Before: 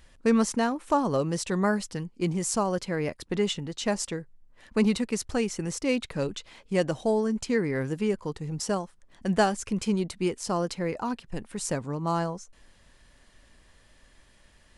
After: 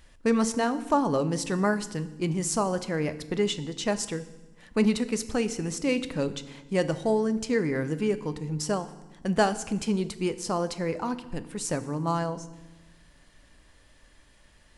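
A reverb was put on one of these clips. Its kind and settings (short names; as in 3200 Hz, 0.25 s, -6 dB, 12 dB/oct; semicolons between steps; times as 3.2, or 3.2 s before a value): FDN reverb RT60 1.1 s, low-frequency decay 1.55×, high-frequency decay 0.9×, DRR 11.5 dB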